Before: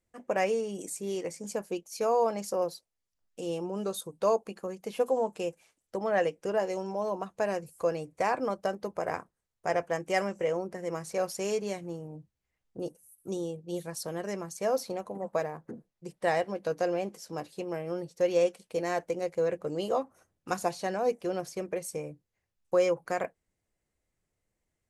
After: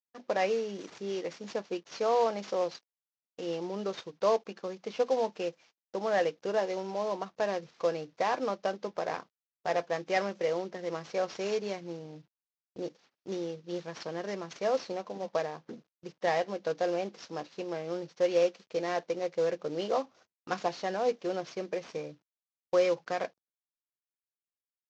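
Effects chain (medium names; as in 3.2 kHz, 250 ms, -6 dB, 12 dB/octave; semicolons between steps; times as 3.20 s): CVSD coder 32 kbps; Bessel high-pass 200 Hz, order 2; gate -58 dBFS, range -23 dB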